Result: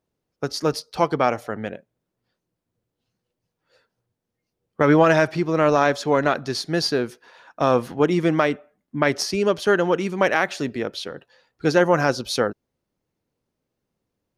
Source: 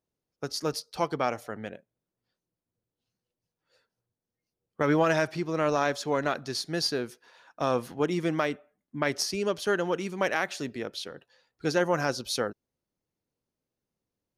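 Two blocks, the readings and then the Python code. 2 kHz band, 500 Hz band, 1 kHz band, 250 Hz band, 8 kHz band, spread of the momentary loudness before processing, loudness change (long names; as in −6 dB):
+7.5 dB, +8.5 dB, +8.0 dB, +8.5 dB, +3.0 dB, 11 LU, +8.0 dB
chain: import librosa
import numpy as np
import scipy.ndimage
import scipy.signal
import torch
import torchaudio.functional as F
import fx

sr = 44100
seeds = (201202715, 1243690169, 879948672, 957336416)

y = fx.high_shelf(x, sr, hz=4200.0, db=-7.5)
y = y * librosa.db_to_amplitude(8.5)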